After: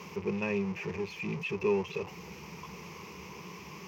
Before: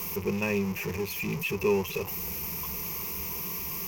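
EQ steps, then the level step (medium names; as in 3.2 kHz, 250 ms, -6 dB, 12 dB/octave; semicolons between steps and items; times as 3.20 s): high-pass 120 Hz 12 dB/octave; distance through air 160 m; -2.5 dB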